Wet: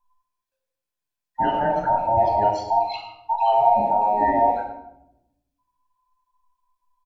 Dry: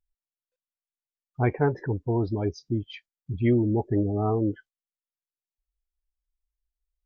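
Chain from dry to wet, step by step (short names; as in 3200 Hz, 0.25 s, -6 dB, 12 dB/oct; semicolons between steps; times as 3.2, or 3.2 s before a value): band inversion scrambler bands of 1000 Hz; limiter -19.5 dBFS, peak gain reduction 8 dB; speakerphone echo 0.1 s, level -19 dB; reverb RT60 0.85 s, pre-delay 14 ms, DRR 0 dB; gain +2 dB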